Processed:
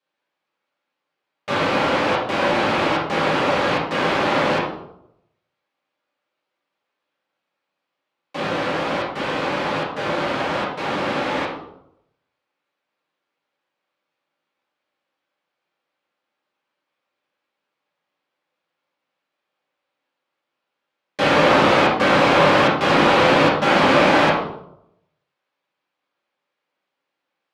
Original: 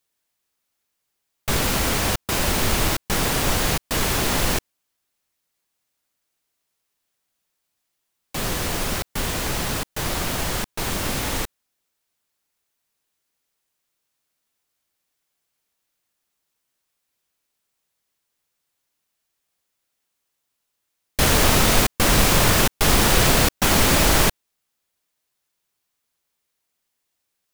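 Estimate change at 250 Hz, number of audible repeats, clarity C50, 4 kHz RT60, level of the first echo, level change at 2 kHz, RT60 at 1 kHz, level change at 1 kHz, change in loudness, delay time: +3.5 dB, no echo, 2.5 dB, 0.50 s, no echo, +4.0 dB, 0.70 s, +7.0 dB, +1.5 dB, no echo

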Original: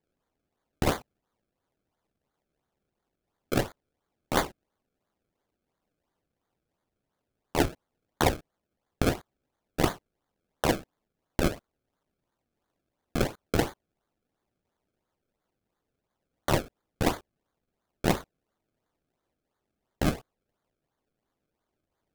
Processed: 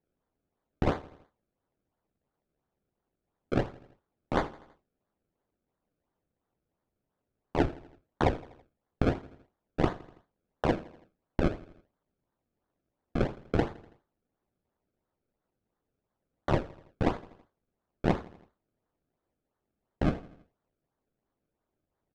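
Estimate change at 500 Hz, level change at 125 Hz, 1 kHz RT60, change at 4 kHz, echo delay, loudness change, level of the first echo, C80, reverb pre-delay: -1.5 dB, -0.5 dB, no reverb, -10.0 dB, 82 ms, -2.0 dB, -19.5 dB, no reverb, no reverb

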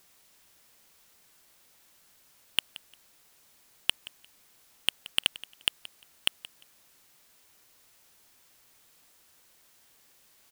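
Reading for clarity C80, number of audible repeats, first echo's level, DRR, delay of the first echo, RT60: no reverb, 2, -18.0 dB, no reverb, 175 ms, no reverb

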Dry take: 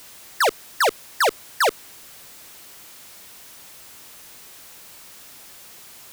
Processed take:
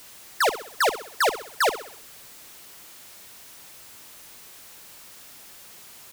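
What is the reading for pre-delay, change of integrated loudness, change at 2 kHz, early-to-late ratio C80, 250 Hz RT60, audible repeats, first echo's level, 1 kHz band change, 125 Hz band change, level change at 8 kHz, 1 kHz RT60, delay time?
no reverb, -2.5 dB, -2.0 dB, no reverb, no reverb, 4, -12.5 dB, -2.0 dB, -2.0 dB, -2.0 dB, no reverb, 64 ms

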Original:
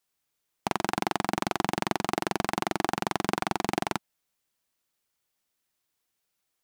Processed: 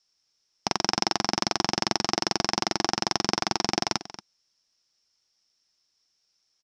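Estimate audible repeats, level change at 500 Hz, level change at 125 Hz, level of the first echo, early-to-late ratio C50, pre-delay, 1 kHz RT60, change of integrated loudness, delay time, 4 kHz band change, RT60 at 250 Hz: 1, 0.0 dB, 0.0 dB, -15.5 dB, no reverb, no reverb, no reverb, +4.0 dB, 231 ms, +11.0 dB, no reverb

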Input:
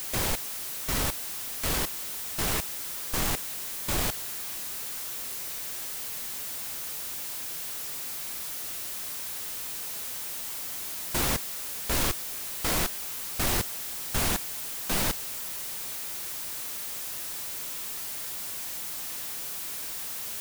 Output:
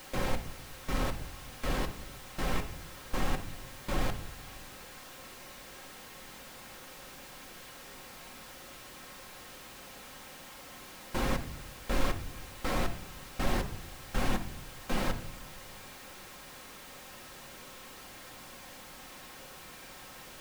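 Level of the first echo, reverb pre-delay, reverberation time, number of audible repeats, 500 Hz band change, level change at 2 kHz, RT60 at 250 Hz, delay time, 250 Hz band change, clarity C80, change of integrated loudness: no echo, 4 ms, 0.75 s, no echo, -1.0 dB, -4.5 dB, 1.2 s, no echo, -0.5 dB, 16.0 dB, -9.5 dB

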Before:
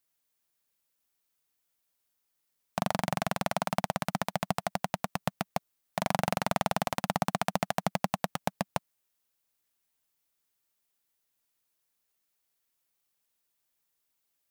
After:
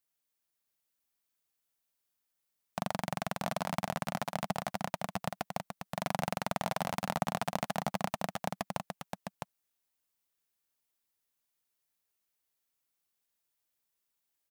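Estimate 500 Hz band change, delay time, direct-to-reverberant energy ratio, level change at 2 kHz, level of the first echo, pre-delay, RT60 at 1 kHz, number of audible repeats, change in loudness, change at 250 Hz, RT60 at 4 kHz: -3.5 dB, 659 ms, no reverb, -4.0 dB, -5.0 dB, no reverb, no reverb, 1, -4.0 dB, -4.0 dB, no reverb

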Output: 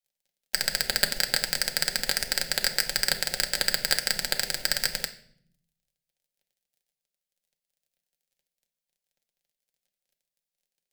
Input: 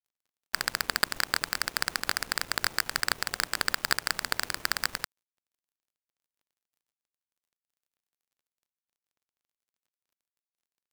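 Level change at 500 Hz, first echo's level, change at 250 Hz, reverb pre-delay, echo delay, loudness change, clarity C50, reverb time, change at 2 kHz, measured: +5.0 dB, no echo, +1.5 dB, 3 ms, no echo, +3.5 dB, 14.0 dB, 0.60 s, +0.5 dB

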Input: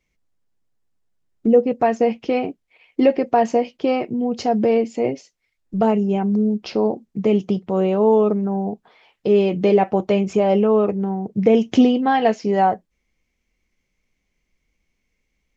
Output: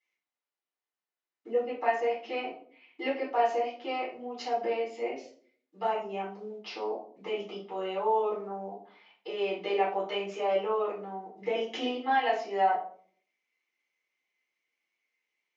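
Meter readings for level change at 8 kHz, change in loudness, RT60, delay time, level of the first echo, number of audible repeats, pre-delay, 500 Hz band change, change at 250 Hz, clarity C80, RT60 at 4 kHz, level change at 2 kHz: no reading, -12.5 dB, 0.50 s, no echo, no echo, no echo, 3 ms, -12.5 dB, -23.0 dB, 11.0 dB, 0.35 s, -4.5 dB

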